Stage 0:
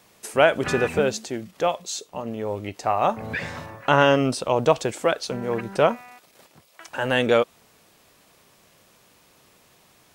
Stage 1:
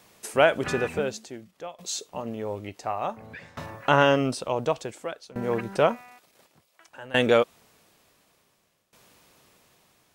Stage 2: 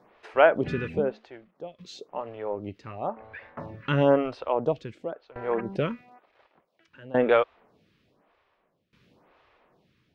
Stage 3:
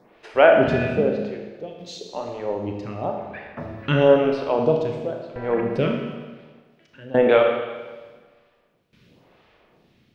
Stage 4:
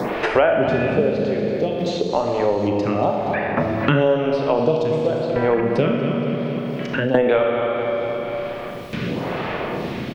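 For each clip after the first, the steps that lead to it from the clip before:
shaped tremolo saw down 0.56 Hz, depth 90%
high-frequency loss of the air 330 metres; phaser with staggered stages 0.98 Hz; level +3.5 dB
parametric band 1,100 Hz −6 dB 1.5 octaves; four-comb reverb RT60 1.4 s, combs from 26 ms, DRR 2 dB; level +6 dB
on a send: repeating echo 235 ms, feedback 37%, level −12 dB; on the sum: multiband upward and downward compressor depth 100%; level +3 dB

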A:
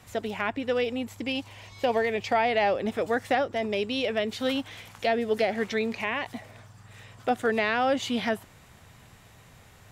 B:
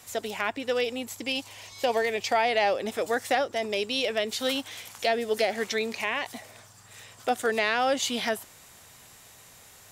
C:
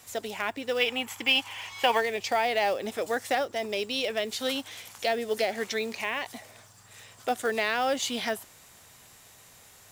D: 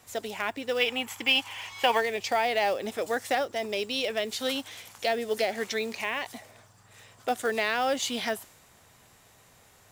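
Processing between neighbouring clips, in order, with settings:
bass and treble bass −9 dB, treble +11 dB
gain on a spectral selection 0:00.81–0:02.00, 750–3,500 Hz +10 dB; log-companded quantiser 6 bits; level −2 dB
one half of a high-frequency compander decoder only

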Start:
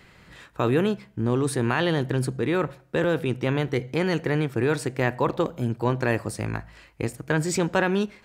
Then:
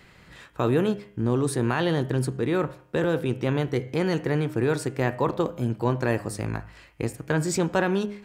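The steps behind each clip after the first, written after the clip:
hum removal 102.2 Hz, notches 33
dynamic equaliser 2,300 Hz, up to −4 dB, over −41 dBFS, Q 1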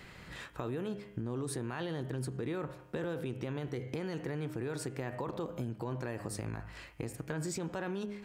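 brickwall limiter −21 dBFS, peak gain reduction 9.5 dB
downward compressor 3 to 1, threshold −38 dBFS, peak gain reduction 10 dB
level +1 dB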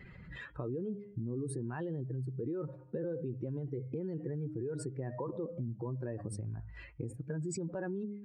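expanding power law on the bin magnitudes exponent 2.1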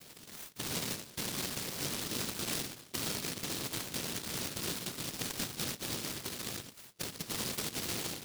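cochlear-implant simulation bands 2
short delay modulated by noise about 4,100 Hz, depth 0.46 ms

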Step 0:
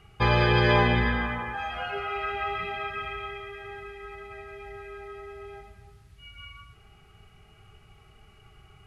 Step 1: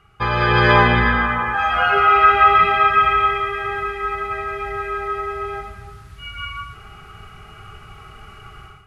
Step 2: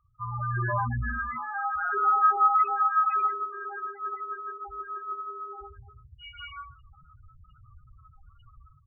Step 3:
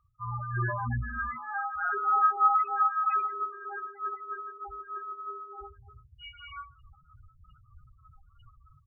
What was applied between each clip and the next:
automatic gain control gain up to 15 dB; parametric band 1,300 Hz +10.5 dB 0.67 octaves; level −2.5 dB
spectral peaks only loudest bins 4; mains-hum notches 50/100/150/200/250/300/350/400 Hz; level −8 dB
amplitude tremolo 3.2 Hz, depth 56%

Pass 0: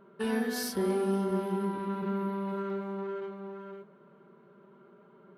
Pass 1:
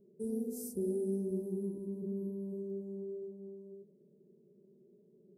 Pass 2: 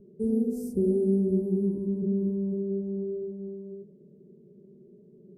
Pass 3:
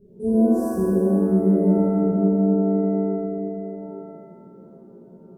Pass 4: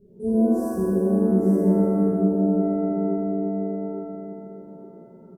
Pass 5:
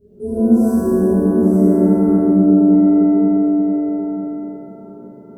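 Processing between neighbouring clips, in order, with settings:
elliptic band-stop filter 440–7,500 Hz, stop band 60 dB; level −5 dB
spectral tilt −3 dB per octave; level +5 dB
reverb with rising layers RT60 1.4 s, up +7 semitones, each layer −8 dB, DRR −8 dB; level −2 dB
single-tap delay 864 ms −7 dB; level −2 dB
convolution reverb RT60 1.6 s, pre-delay 6 ms, DRR −6.5 dB

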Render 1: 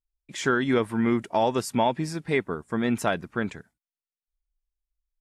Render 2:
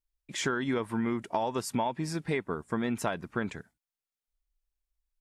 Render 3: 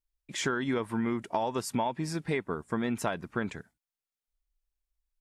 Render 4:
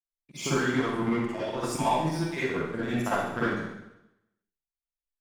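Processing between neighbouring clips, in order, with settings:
dynamic equaliser 980 Hz, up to +5 dB, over −40 dBFS, Q 3.2; downward compressor 5 to 1, threshold −27 dBFS, peak gain reduction 10.5 dB
no processing that can be heard
time-frequency cells dropped at random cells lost 29%; power curve on the samples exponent 1.4; convolution reverb RT60 0.90 s, pre-delay 44 ms, DRR −10 dB

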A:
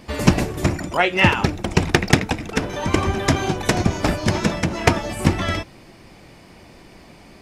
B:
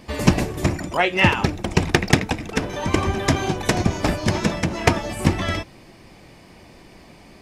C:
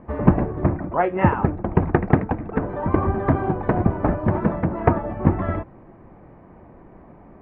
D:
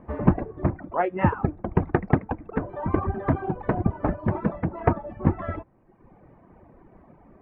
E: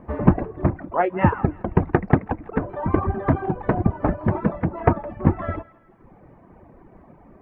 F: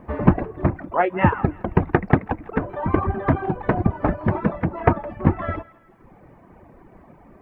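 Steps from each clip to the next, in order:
notch filter 1,400 Hz, Q 17; level −1 dB
low-pass filter 1,400 Hz 24 dB per octave; level +1 dB
reverb reduction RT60 0.98 s; level −3.5 dB
feedback echo with a high-pass in the loop 164 ms, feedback 49%, high-pass 820 Hz, level −19 dB; level +3.5 dB
high-shelf EQ 2,000 Hz +8 dB

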